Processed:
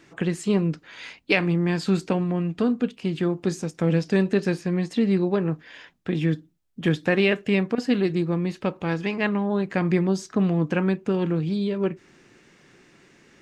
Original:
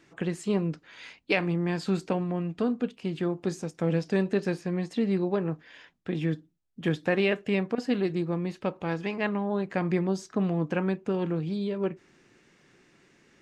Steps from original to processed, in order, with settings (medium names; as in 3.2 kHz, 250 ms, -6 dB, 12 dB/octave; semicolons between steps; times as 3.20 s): dynamic bell 700 Hz, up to -4 dB, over -42 dBFS, Q 0.89; trim +6 dB